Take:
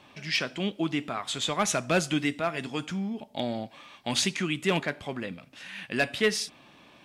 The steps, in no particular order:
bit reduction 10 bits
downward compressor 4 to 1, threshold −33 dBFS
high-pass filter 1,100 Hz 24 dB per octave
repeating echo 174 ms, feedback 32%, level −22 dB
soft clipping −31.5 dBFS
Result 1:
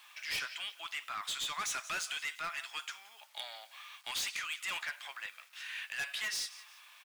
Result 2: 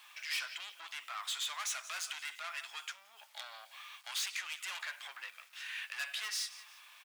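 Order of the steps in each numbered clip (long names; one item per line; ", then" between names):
repeating echo, then bit reduction, then high-pass filter, then soft clipping, then downward compressor
repeating echo, then bit reduction, then soft clipping, then downward compressor, then high-pass filter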